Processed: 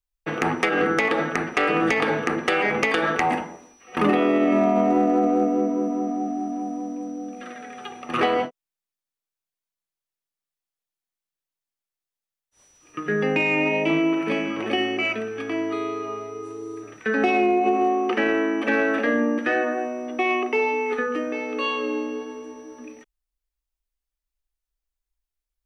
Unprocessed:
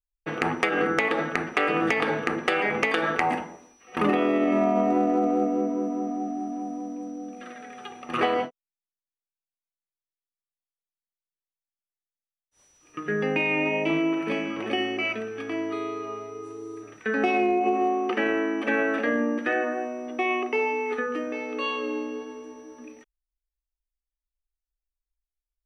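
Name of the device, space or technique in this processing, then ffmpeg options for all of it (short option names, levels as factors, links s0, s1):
one-band saturation: -filter_complex "[0:a]acrossover=split=380|3100[s0][s1][s2];[s1]asoftclip=type=tanh:threshold=0.15[s3];[s0][s3][s2]amix=inputs=3:normalize=0,volume=1.5"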